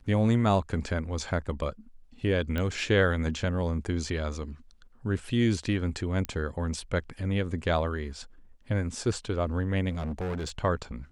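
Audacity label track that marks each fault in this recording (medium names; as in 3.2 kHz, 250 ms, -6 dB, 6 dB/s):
2.580000	2.580000	pop -18 dBFS
6.250000	6.250000	pop -17 dBFS
9.890000	10.500000	clipped -29 dBFS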